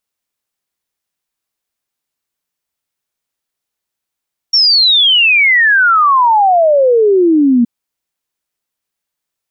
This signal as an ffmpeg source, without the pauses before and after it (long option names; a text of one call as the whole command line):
ffmpeg -f lavfi -i "aevalsrc='0.501*clip(min(t,3.12-t)/0.01,0,1)*sin(2*PI*5600*3.12/log(230/5600)*(exp(log(230/5600)*t/3.12)-1))':duration=3.12:sample_rate=44100" out.wav